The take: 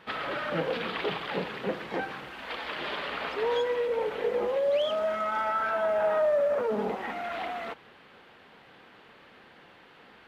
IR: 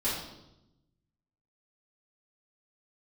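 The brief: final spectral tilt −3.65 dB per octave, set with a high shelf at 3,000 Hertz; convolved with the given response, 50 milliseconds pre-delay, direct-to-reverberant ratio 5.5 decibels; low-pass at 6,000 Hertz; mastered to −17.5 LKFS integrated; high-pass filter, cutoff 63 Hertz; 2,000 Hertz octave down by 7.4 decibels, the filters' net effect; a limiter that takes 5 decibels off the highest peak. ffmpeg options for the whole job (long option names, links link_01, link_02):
-filter_complex "[0:a]highpass=63,lowpass=6000,equalizer=frequency=2000:width_type=o:gain=-7.5,highshelf=frequency=3000:gain=-7,alimiter=limit=-24dB:level=0:latency=1,asplit=2[link_01][link_02];[1:a]atrim=start_sample=2205,adelay=50[link_03];[link_02][link_03]afir=irnorm=-1:irlink=0,volume=-13.5dB[link_04];[link_01][link_04]amix=inputs=2:normalize=0,volume=14dB"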